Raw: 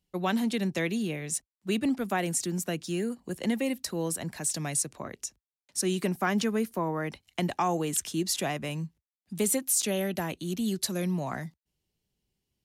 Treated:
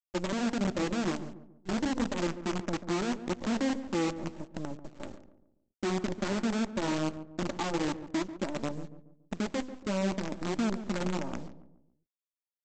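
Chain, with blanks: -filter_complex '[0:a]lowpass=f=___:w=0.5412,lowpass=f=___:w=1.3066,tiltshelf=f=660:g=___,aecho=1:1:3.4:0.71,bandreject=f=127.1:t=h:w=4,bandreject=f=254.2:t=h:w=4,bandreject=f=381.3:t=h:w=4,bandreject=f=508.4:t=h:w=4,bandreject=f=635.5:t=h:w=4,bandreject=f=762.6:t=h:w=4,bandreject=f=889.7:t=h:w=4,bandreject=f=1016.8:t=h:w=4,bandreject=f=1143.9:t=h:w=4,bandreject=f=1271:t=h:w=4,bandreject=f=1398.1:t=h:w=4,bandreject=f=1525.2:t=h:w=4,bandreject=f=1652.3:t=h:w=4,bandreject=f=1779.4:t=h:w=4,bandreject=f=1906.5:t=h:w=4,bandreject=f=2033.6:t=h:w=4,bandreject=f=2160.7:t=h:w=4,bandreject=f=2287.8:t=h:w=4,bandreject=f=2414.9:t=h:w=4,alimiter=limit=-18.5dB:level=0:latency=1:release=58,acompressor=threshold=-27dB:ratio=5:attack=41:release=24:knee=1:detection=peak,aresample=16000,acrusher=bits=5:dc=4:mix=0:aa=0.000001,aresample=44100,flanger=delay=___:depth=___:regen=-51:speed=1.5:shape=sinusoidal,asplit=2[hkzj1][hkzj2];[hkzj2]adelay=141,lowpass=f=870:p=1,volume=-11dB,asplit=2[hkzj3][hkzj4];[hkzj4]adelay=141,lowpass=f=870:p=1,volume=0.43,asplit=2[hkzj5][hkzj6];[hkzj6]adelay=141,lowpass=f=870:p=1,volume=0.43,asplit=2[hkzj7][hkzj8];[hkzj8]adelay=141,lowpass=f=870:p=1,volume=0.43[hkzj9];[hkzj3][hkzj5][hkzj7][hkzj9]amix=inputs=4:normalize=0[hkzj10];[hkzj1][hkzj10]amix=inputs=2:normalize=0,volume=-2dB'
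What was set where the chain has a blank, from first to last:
1300, 1300, 10, 0.1, 6.9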